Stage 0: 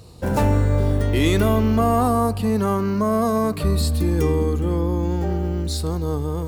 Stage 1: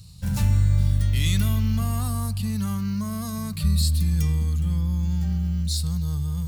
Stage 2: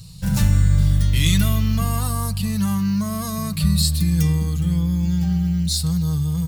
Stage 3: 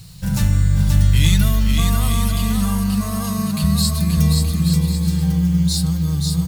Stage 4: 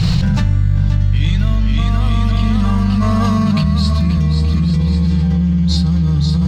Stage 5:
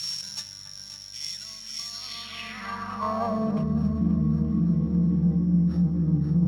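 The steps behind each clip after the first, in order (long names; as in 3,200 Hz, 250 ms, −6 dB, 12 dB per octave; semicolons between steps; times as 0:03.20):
drawn EQ curve 180 Hz 0 dB, 350 Hz −28 dB, 4,200 Hz +1 dB
comb filter 6.2 ms, depth 51%; level +5.5 dB
bit reduction 8 bits; bouncing-ball delay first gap 530 ms, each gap 0.65×, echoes 5
high-frequency loss of the air 190 metres; on a send at −15 dB: convolution reverb, pre-delay 3 ms; on the sum: envelope flattener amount 100%; level −3.5 dB
samples sorted by size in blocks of 8 samples; bucket-brigade delay 282 ms, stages 4,096, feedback 77%, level −9 dB; band-pass filter sweep 6,000 Hz → 280 Hz, 0:01.90–0:03.83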